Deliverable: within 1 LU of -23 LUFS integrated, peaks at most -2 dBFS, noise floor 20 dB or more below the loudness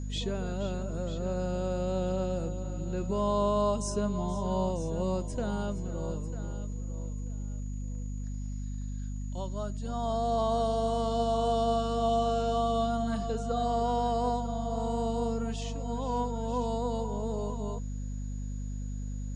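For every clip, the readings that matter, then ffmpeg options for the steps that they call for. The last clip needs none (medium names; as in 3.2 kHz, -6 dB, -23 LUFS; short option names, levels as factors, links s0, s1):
hum 50 Hz; highest harmonic 250 Hz; hum level -33 dBFS; steady tone 6.8 kHz; tone level -56 dBFS; loudness -32.0 LUFS; peak level -17.5 dBFS; loudness target -23.0 LUFS
-> -af "bandreject=f=50:t=h:w=4,bandreject=f=100:t=h:w=4,bandreject=f=150:t=h:w=4,bandreject=f=200:t=h:w=4,bandreject=f=250:t=h:w=4"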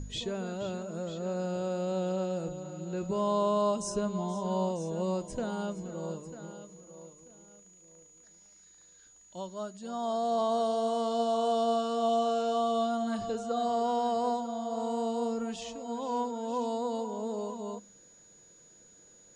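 hum not found; steady tone 6.8 kHz; tone level -56 dBFS
-> -af "bandreject=f=6800:w=30"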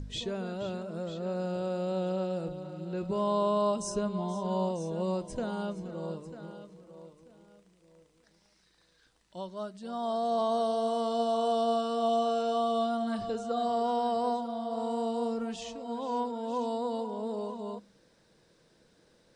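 steady tone not found; loudness -32.0 LUFS; peak level -18.5 dBFS; loudness target -23.0 LUFS
-> -af "volume=2.82"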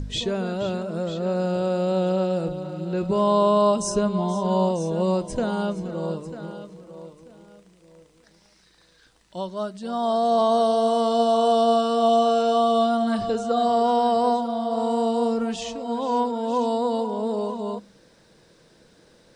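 loudness -23.0 LUFS; peak level -9.5 dBFS; noise floor -58 dBFS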